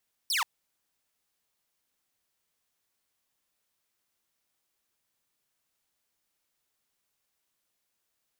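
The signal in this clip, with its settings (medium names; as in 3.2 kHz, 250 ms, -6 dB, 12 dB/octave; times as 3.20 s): laser zap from 5.8 kHz, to 840 Hz, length 0.13 s saw, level -22.5 dB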